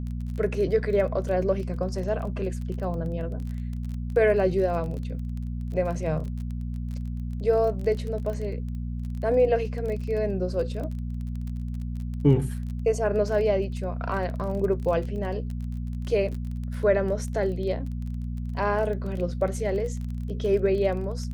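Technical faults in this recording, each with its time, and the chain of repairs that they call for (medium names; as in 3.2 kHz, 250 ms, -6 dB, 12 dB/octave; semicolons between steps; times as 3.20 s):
crackle 23 per s -33 dBFS
hum 60 Hz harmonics 4 -31 dBFS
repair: de-click; de-hum 60 Hz, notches 4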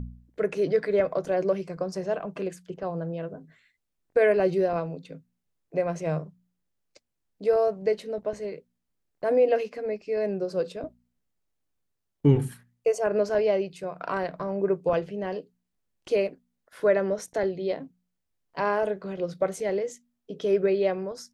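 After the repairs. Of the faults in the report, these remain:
nothing left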